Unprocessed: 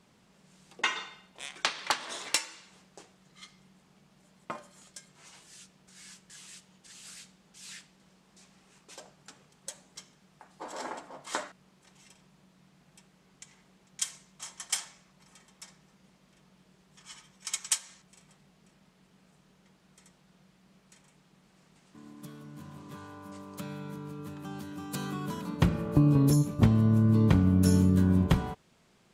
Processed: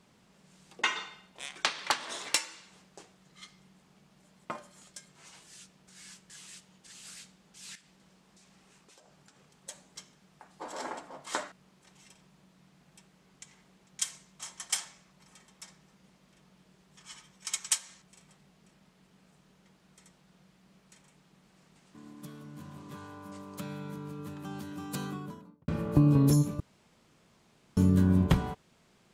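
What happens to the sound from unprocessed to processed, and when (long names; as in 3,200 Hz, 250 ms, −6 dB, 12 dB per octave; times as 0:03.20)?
0:07.75–0:09.69: downward compressor 5 to 1, threshold −56 dBFS
0:24.87–0:25.68: fade out and dull
0:26.60–0:27.77: fill with room tone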